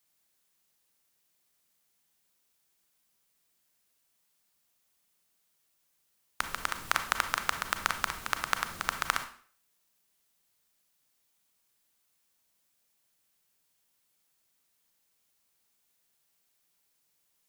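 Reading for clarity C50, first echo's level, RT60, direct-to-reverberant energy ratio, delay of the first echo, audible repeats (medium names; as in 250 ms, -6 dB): 10.0 dB, no echo, 0.50 s, 8.0 dB, no echo, no echo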